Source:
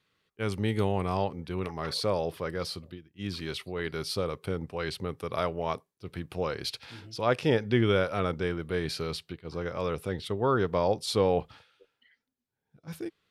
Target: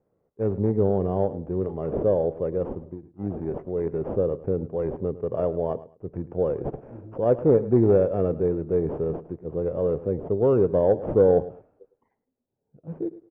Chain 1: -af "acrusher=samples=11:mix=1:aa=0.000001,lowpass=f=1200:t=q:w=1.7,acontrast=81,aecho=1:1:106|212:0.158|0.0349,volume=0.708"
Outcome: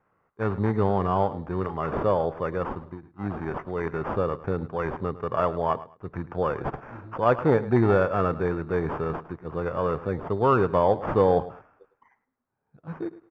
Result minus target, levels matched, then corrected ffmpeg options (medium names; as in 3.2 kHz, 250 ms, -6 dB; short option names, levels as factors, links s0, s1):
1 kHz band +11.0 dB
-af "acrusher=samples=11:mix=1:aa=0.000001,lowpass=f=520:t=q:w=1.7,acontrast=81,aecho=1:1:106|212:0.158|0.0349,volume=0.708"